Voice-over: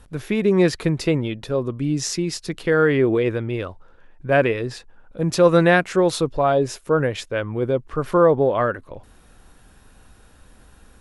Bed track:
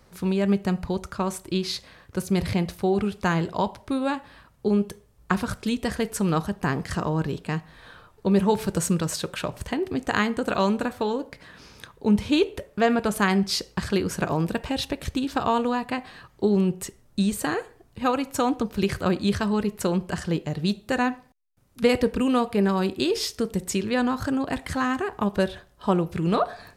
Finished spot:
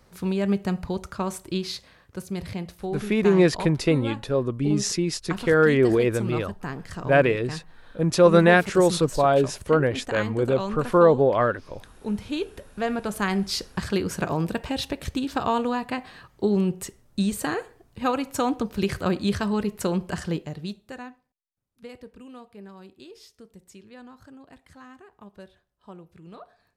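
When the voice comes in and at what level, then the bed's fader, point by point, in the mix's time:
2.80 s, −1.0 dB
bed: 0:01.51 −1.5 dB
0:02.34 −8 dB
0:12.47 −8 dB
0:13.74 −1 dB
0:20.27 −1 dB
0:21.34 −22 dB

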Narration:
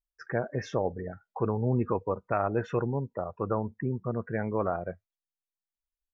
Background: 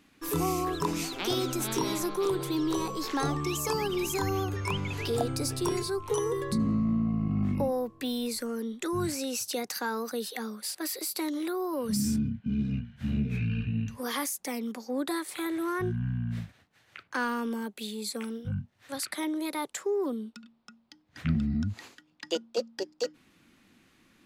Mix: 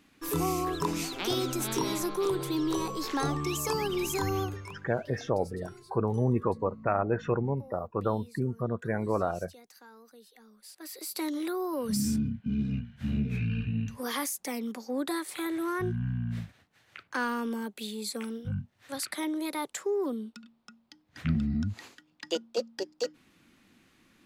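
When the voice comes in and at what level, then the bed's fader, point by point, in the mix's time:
4.55 s, +0.5 dB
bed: 0:04.44 −0.5 dB
0:04.87 −21 dB
0:10.45 −21 dB
0:11.23 −0.5 dB

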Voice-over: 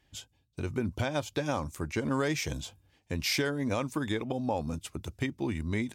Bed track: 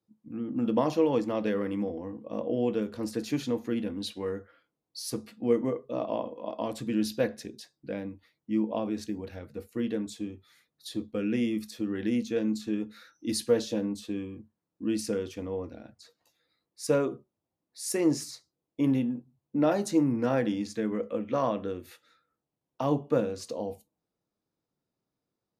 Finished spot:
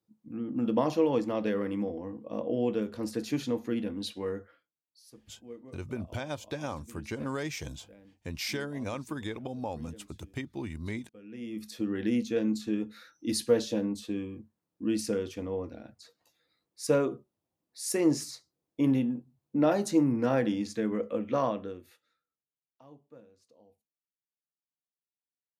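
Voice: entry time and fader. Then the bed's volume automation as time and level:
5.15 s, −5.0 dB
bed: 0:04.53 −1 dB
0:04.73 −20.5 dB
0:11.23 −20.5 dB
0:11.72 0 dB
0:21.40 0 dB
0:22.86 −27 dB

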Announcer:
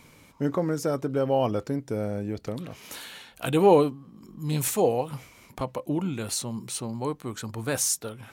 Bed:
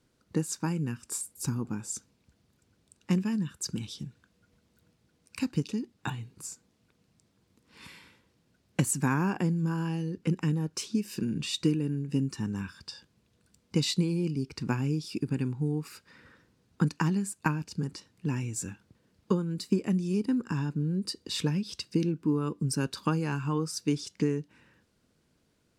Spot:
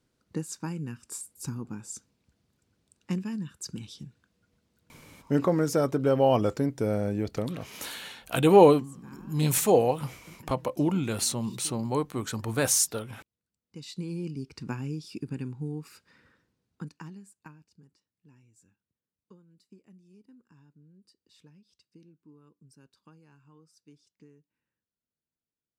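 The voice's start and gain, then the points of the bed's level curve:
4.90 s, +2.0 dB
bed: 0:04.97 −4 dB
0:05.63 −23.5 dB
0:13.61 −23.5 dB
0:14.12 −5 dB
0:16.12 −5 dB
0:18.06 −28 dB

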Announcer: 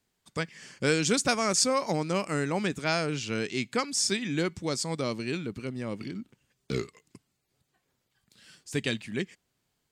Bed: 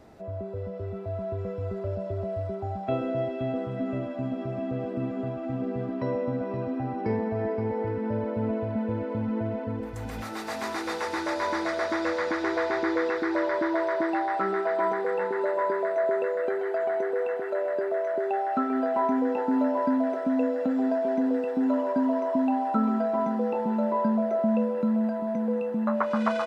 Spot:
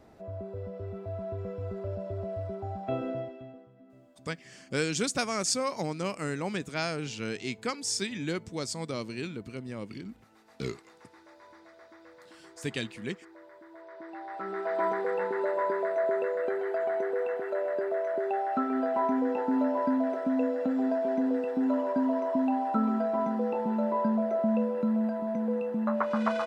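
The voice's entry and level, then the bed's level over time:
3.90 s, −4.0 dB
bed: 0:03.10 −4 dB
0:03.74 −26 dB
0:13.65 −26 dB
0:14.80 −2.5 dB

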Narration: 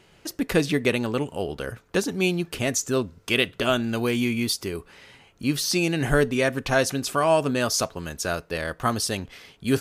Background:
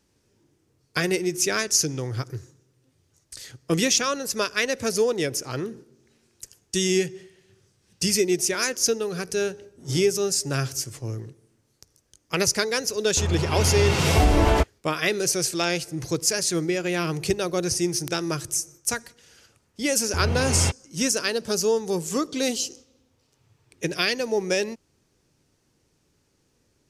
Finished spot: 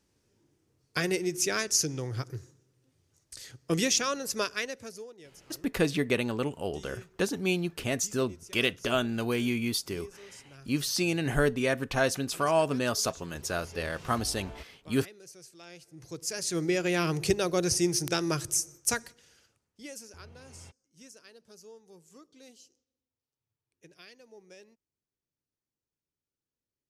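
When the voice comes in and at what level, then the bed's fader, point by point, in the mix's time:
5.25 s, −5.0 dB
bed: 0:04.48 −5 dB
0:05.16 −26.5 dB
0:15.60 −26.5 dB
0:16.73 −2 dB
0:19.03 −2 dB
0:20.32 −28.5 dB

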